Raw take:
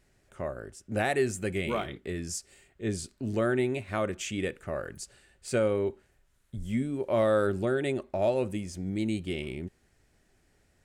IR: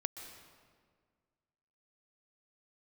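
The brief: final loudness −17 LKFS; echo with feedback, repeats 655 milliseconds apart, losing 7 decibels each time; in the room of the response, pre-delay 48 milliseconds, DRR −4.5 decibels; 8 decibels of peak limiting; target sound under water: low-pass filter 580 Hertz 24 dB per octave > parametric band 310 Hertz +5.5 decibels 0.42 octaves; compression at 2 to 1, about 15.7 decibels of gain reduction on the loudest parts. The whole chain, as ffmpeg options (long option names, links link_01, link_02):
-filter_complex "[0:a]acompressor=threshold=-52dB:ratio=2,alimiter=level_in=14.5dB:limit=-24dB:level=0:latency=1,volume=-14.5dB,aecho=1:1:655|1310|1965|2620|3275:0.447|0.201|0.0905|0.0407|0.0183,asplit=2[link_01][link_02];[1:a]atrim=start_sample=2205,adelay=48[link_03];[link_02][link_03]afir=irnorm=-1:irlink=0,volume=4.5dB[link_04];[link_01][link_04]amix=inputs=2:normalize=0,lowpass=frequency=580:width=0.5412,lowpass=frequency=580:width=1.3066,equalizer=frequency=310:width_type=o:width=0.42:gain=5.5,volume=24.5dB"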